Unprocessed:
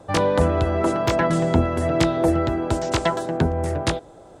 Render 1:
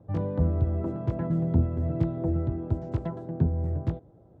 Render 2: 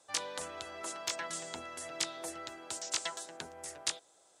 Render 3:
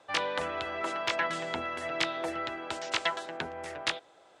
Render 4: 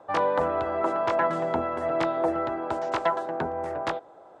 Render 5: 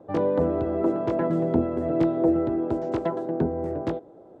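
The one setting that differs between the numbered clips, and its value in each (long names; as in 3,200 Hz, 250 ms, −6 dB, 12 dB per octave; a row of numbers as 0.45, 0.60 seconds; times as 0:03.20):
resonant band-pass, frequency: 110, 7,500, 2,700, 990, 340 Hertz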